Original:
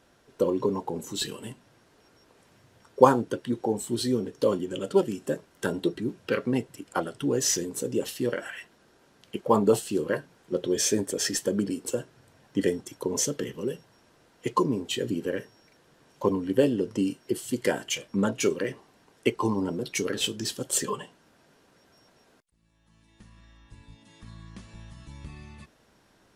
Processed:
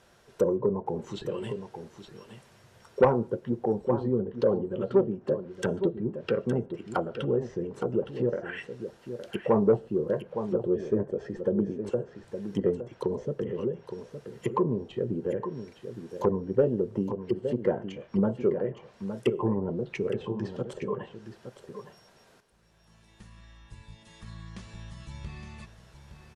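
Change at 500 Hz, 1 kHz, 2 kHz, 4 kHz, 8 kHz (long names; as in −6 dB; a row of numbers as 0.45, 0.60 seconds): +0.5 dB, −5.0 dB, −6.5 dB, below −10 dB, below −25 dB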